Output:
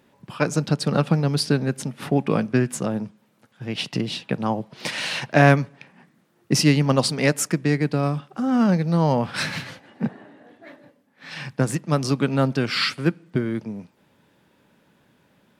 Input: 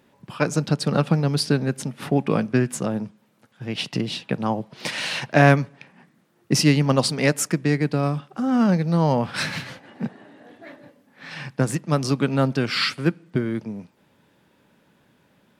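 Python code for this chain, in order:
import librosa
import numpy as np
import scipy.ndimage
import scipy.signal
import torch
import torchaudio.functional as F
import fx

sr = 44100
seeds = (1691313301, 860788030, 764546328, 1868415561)

y = fx.band_widen(x, sr, depth_pct=40, at=(9.71, 11.53))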